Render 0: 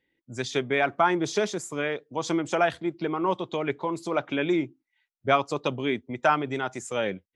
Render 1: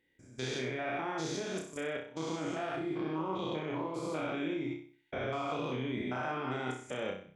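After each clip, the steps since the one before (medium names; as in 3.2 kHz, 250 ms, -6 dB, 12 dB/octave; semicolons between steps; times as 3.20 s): spectrogram pixelated in time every 200 ms; level held to a coarse grid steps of 20 dB; flutter echo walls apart 5.4 m, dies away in 0.46 s; trim +2.5 dB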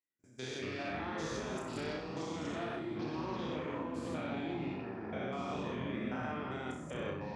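high-pass 110 Hz; gate with hold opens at -49 dBFS; ever faster or slower copies 101 ms, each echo -5 st, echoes 3; trim -5 dB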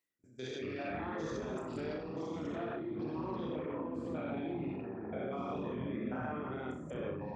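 resonances exaggerated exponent 1.5; reverse; upward compressor, threshold -51 dBFS; reverse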